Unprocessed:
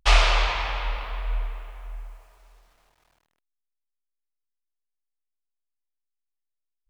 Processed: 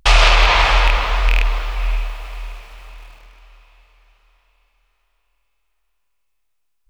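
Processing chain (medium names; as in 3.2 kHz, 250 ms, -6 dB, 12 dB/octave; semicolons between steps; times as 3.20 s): rattle on loud lows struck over -24 dBFS, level -13 dBFS; on a send: echo that smears into a reverb 557 ms, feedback 42%, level -16 dB; on the sum: loudness maximiser +15 dB; trim -1 dB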